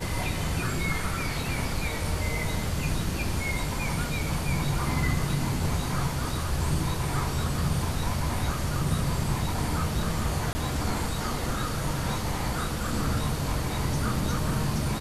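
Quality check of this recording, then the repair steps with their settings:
10.53–10.55 s: dropout 20 ms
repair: interpolate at 10.53 s, 20 ms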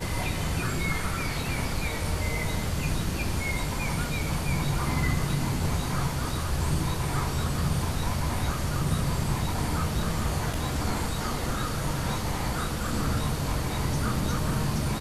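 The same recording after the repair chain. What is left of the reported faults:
nothing left

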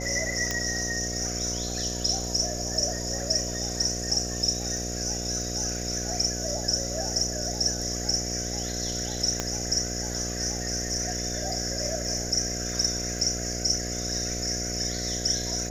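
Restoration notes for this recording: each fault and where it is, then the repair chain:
buzz 60 Hz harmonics 12 -34 dBFS
crackle 29 per s -37 dBFS
0.51 s: pop -12 dBFS
9.40 s: pop -12 dBFS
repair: de-click; de-hum 60 Hz, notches 12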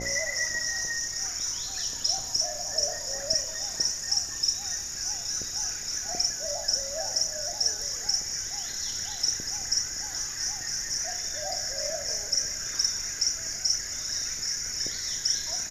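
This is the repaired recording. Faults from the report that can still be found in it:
0.51 s: pop

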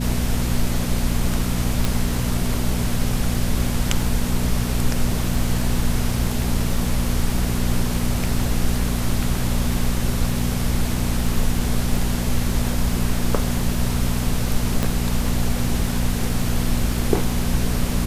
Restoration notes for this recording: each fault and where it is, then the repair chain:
crackle 29 per s -29 dBFS
hum 60 Hz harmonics 4 -24 dBFS
1.85 s: pop
14.83 s: pop -7 dBFS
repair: de-click; de-hum 60 Hz, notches 4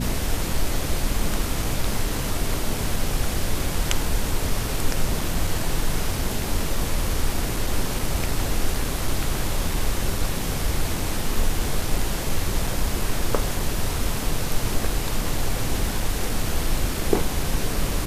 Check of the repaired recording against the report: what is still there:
14.83 s: pop

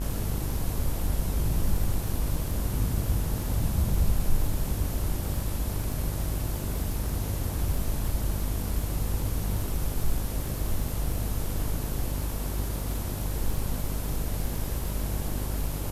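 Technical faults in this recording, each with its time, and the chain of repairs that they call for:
buzz 50 Hz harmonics 36 -32 dBFS
crackle 31 per s -32 dBFS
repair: de-click; de-hum 50 Hz, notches 36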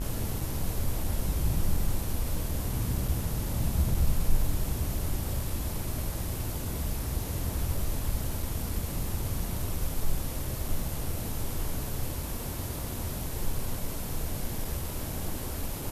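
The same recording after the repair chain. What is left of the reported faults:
nothing left

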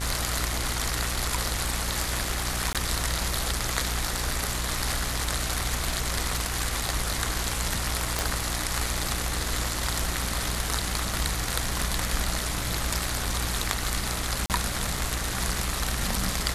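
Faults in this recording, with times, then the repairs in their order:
buzz 60 Hz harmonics 36 -33 dBFS
crackle 41 per s -37 dBFS
2.73–2.75 s: dropout 17 ms
8.19 s: pop
14.46–14.50 s: dropout 38 ms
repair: de-click; de-hum 60 Hz, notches 36; interpolate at 2.73 s, 17 ms; interpolate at 14.46 s, 38 ms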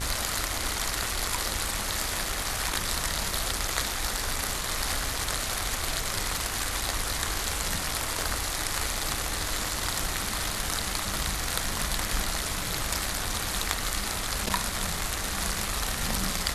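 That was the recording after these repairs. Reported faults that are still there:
8.19 s: pop

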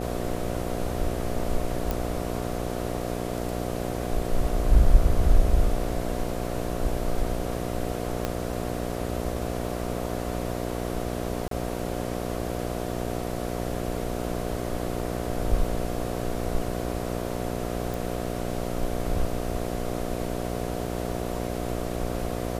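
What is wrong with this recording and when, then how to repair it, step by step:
buzz 60 Hz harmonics 12 -31 dBFS
1.91 s: pop
8.25 s: pop -12 dBFS
11.48–11.51 s: dropout 33 ms
17.94 s: pop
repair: de-click; de-hum 60 Hz, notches 12; interpolate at 11.48 s, 33 ms

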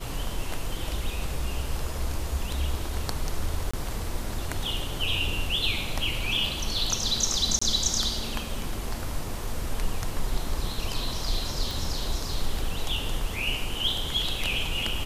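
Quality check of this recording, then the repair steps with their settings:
3.71–3.73 s: dropout 25 ms
7.59–7.62 s: dropout 25 ms
11.71 s: pop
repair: de-click; interpolate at 3.71 s, 25 ms; interpolate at 7.59 s, 25 ms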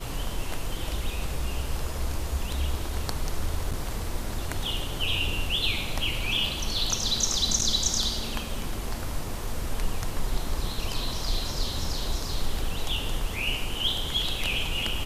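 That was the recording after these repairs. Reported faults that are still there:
nothing left

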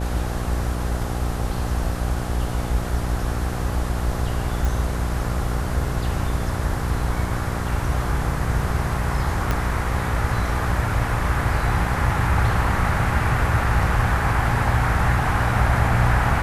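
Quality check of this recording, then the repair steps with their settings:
buzz 60 Hz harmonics 14 -26 dBFS
4.65 s: pop
9.51 s: pop -8 dBFS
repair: de-click; de-hum 60 Hz, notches 14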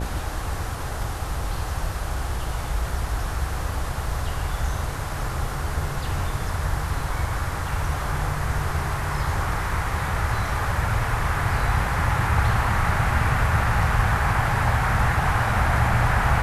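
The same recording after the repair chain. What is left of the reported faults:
9.51 s: pop

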